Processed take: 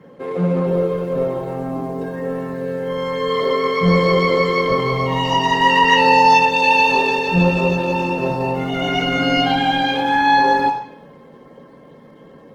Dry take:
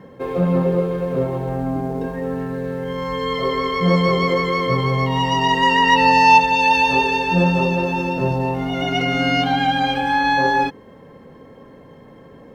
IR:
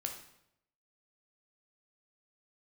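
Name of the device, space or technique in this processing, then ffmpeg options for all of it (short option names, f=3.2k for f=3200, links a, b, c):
far-field microphone of a smart speaker: -filter_complex "[1:a]atrim=start_sample=2205[a];[0:a][a]afir=irnorm=-1:irlink=0,highpass=f=130:w=0.5412,highpass=f=130:w=1.3066,dynaudnorm=f=270:g=21:m=9dB" -ar 48000 -c:a libopus -b:a 16k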